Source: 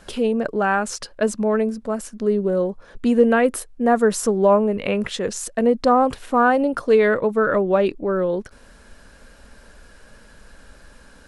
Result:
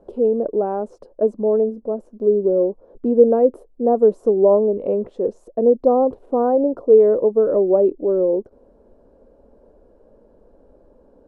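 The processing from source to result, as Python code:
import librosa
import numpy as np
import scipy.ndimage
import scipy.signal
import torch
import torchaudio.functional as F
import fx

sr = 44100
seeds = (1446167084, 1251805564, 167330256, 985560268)

y = fx.curve_eq(x, sr, hz=(160.0, 360.0, 530.0, 990.0, 1700.0, 12000.0), db=(0, 14, 13, 0, -21, -25))
y = y * 10.0 ** (-9.0 / 20.0)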